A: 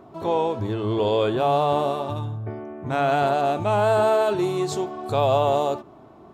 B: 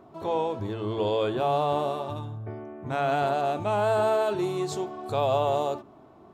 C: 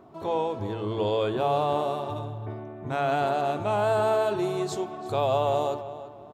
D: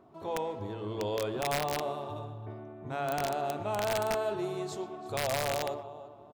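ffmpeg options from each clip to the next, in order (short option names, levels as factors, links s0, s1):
-af "bandreject=f=56.15:t=h:w=4,bandreject=f=112.3:t=h:w=4,bandreject=f=168.45:t=h:w=4,bandreject=f=224.6:t=h:w=4,bandreject=f=280.75:t=h:w=4,bandreject=f=336.9:t=h:w=4,bandreject=f=393.05:t=h:w=4,volume=0.596"
-filter_complex "[0:a]asplit=2[s0][s1];[s1]adelay=338,lowpass=f=3000:p=1,volume=0.224,asplit=2[s2][s3];[s3]adelay=338,lowpass=f=3000:p=1,volume=0.34,asplit=2[s4][s5];[s5]adelay=338,lowpass=f=3000:p=1,volume=0.34[s6];[s0][s2][s4][s6]amix=inputs=4:normalize=0"
-filter_complex "[0:a]asplit=2[s0][s1];[s1]adelay=120,highpass=300,lowpass=3400,asoftclip=type=hard:threshold=0.0794,volume=0.282[s2];[s0][s2]amix=inputs=2:normalize=0,aeval=exprs='(mod(6.31*val(0)+1,2)-1)/6.31':c=same,volume=0.447"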